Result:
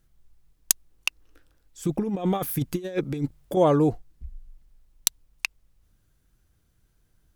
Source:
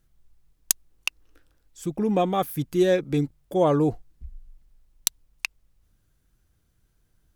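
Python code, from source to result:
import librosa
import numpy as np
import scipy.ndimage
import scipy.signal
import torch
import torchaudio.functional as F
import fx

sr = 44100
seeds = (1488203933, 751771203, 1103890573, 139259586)

y = fx.over_compress(x, sr, threshold_db=-26.0, ratio=-0.5, at=(1.85, 3.57))
y = F.gain(torch.from_numpy(y), 1.0).numpy()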